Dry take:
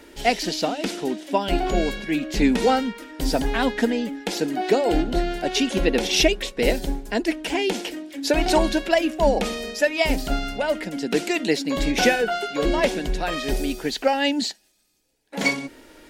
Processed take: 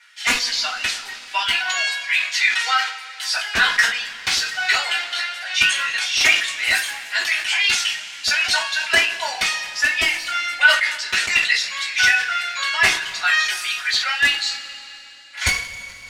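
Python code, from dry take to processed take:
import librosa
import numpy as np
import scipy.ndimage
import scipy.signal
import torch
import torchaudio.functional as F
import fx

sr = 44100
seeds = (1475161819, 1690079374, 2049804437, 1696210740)

y = fx.law_mismatch(x, sr, coded='A')
y = fx.dereverb_blind(y, sr, rt60_s=1.9)
y = scipy.signal.sosfilt(scipy.signal.butter(4, 1400.0, 'highpass', fs=sr, output='sos'), y)
y = fx.rider(y, sr, range_db=5, speed_s=0.5)
y = fx.transient(y, sr, attack_db=-7, sustain_db=11, at=(5.39, 7.84))
y = (np.mod(10.0 ** (16.5 / 20.0) * y + 1.0, 2.0) - 1.0) / 10.0 ** (16.5 / 20.0)
y = fx.air_absorb(y, sr, metres=64.0)
y = fx.rev_double_slope(y, sr, seeds[0], early_s=0.23, late_s=3.3, knee_db=-22, drr_db=-7.5)
y = fx.sustainer(y, sr, db_per_s=95.0)
y = F.gain(torch.from_numpy(y), 5.0).numpy()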